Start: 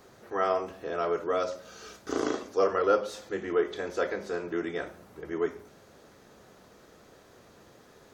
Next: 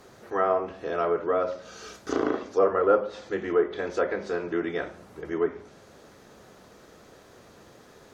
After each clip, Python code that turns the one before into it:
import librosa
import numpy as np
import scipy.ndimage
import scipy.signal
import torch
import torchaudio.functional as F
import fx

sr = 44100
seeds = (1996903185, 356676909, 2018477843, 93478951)

y = fx.env_lowpass_down(x, sr, base_hz=1600.0, full_db=-23.5)
y = y * 10.0 ** (3.5 / 20.0)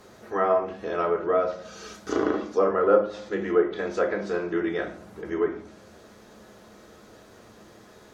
y = fx.rev_fdn(x, sr, rt60_s=0.47, lf_ratio=1.35, hf_ratio=0.8, size_ms=28.0, drr_db=5.5)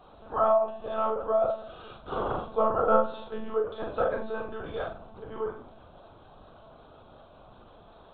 y = fx.fixed_phaser(x, sr, hz=810.0, stages=4)
y = fx.lpc_monotone(y, sr, seeds[0], pitch_hz=220.0, order=16)
y = fx.doubler(y, sr, ms=42.0, db=-5.5)
y = y * 10.0 ** (1.5 / 20.0)